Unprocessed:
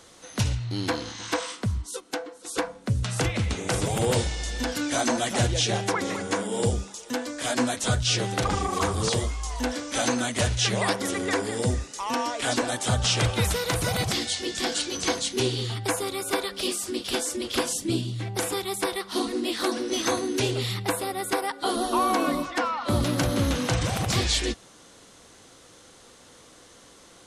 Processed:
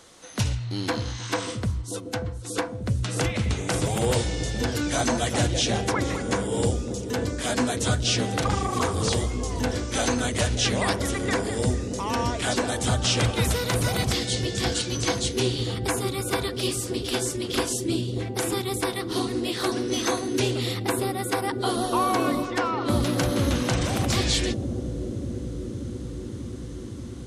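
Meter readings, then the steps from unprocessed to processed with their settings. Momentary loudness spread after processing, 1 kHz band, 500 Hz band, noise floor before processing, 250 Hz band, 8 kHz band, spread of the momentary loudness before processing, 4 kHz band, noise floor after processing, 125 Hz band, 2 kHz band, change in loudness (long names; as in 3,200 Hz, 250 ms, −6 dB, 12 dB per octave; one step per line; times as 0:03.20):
8 LU, 0.0 dB, +1.5 dB, −52 dBFS, +2.0 dB, 0.0 dB, 7 LU, 0.0 dB, −35 dBFS, +2.0 dB, 0.0 dB, +0.5 dB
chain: bucket-brigade delay 584 ms, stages 2,048, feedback 81%, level −6.5 dB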